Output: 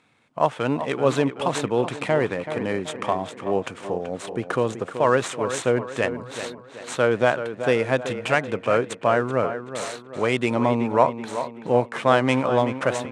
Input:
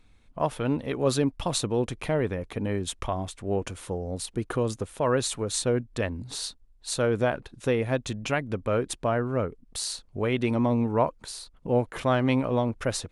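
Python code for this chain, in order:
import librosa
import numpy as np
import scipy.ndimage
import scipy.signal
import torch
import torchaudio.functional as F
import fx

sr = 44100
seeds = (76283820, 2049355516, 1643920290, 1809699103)

p1 = scipy.ndimage.median_filter(x, 9, mode='constant')
p2 = scipy.signal.sosfilt(scipy.signal.ellip(3, 1.0, 40, [120.0, 9100.0], 'bandpass', fs=sr, output='sos'), p1)
p3 = fx.low_shelf(p2, sr, hz=390.0, db=-9.5)
p4 = p3 + fx.echo_tape(p3, sr, ms=380, feedback_pct=51, wet_db=-9, lp_hz=3200.0, drive_db=13.0, wow_cents=13, dry=0)
y = p4 * librosa.db_to_amplitude(9.0)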